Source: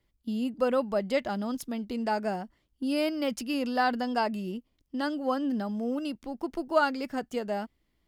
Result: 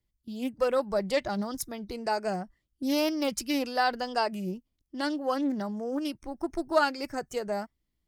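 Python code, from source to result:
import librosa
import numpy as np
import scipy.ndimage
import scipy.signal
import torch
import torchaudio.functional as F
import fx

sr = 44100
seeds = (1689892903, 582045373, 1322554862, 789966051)

y = fx.noise_reduce_blind(x, sr, reduce_db=12)
y = fx.bass_treble(y, sr, bass_db=7, treble_db=8)
y = fx.doppler_dist(y, sr, depth_ms=0.19)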